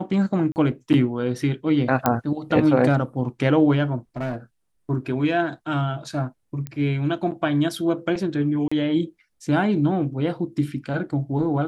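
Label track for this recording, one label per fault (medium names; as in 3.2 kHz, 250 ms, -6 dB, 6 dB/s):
0.520000	0.560000	dropout 39 ms
2.060000	2.060000	pop -5 dBFS
4.170000	4.360000	clipped -23 dBFS
6.670000	6.670000	pop -17 dBFS
8.680000	8.710000	dropout 35 ms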